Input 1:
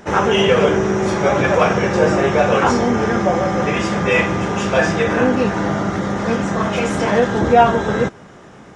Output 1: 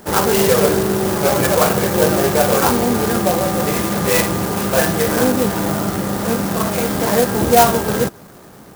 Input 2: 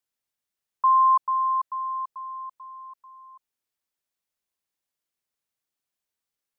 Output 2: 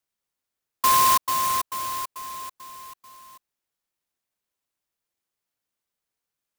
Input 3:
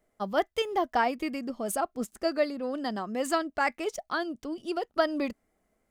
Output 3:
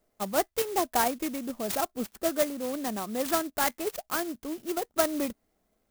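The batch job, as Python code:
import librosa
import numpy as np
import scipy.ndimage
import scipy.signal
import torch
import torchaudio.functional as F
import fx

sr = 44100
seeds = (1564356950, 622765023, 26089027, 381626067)

y = fx.high_shelf(x, sr, hz=8400.0, db=5.0)
y = fx.clock_jitter(y, sr, seeds[0], jitter_ms=0.087)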